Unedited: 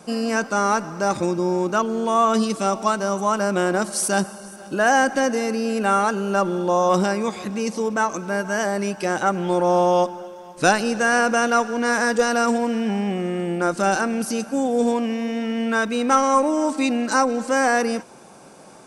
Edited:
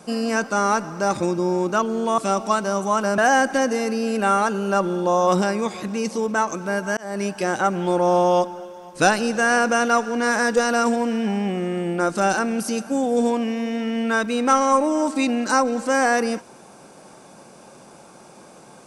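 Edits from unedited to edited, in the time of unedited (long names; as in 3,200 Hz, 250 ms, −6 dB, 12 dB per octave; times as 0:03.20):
0:02.18–0:02.54: remove
0:03.54–0:04.80: remove
0:08.59–0:08.85: fade in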